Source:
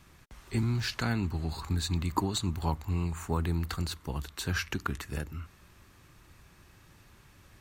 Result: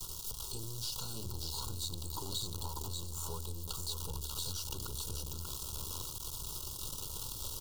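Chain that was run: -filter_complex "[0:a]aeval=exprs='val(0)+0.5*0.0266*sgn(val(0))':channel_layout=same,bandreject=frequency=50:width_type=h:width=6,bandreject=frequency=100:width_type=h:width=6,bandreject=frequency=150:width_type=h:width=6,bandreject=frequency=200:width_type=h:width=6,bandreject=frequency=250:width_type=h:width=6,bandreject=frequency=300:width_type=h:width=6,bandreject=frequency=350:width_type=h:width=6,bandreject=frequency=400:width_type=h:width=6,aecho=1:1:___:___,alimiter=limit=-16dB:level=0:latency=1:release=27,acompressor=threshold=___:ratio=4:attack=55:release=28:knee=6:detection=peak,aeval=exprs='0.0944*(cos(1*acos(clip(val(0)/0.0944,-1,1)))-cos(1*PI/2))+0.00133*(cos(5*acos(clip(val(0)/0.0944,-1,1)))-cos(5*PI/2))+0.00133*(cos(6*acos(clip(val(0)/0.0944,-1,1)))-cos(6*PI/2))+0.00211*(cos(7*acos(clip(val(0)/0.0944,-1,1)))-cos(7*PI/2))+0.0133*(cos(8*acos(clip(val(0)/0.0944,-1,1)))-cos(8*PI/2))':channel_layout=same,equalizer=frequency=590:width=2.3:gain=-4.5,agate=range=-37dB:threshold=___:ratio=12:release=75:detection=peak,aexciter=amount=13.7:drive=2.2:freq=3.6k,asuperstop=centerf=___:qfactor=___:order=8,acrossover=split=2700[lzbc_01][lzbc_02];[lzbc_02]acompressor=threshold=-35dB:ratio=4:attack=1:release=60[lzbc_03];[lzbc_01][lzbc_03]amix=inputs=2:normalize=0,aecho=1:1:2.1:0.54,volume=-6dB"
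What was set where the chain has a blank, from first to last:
589, 0.355, -43dB, -42dB, 1900, 1.3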